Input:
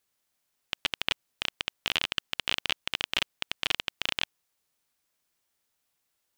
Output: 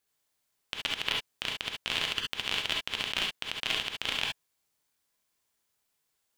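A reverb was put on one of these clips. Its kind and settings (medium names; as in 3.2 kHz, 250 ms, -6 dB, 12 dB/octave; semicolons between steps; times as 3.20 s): gated-style reverb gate 90 ms rising, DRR -0.5 dB; trim -3.5 dB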